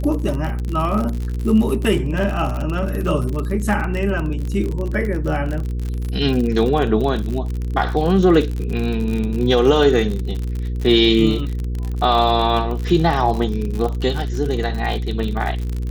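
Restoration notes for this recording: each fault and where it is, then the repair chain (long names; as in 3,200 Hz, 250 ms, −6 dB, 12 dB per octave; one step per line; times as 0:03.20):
surface crackle 54 per second −23 dBFS
mains hum 60 Hz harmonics 8 −23 dBFS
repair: click removal
hum removal 60 Hz, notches 8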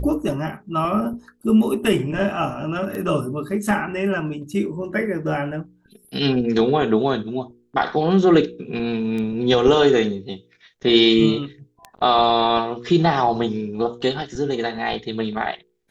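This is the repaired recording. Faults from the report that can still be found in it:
none of them is left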